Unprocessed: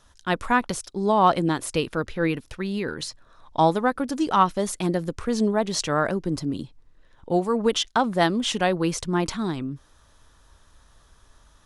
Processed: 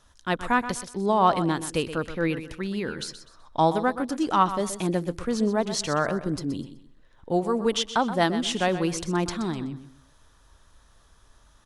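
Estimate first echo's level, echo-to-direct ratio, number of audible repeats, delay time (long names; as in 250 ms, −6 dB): −12.0 dB, −11.5 dB, 3, 125 ms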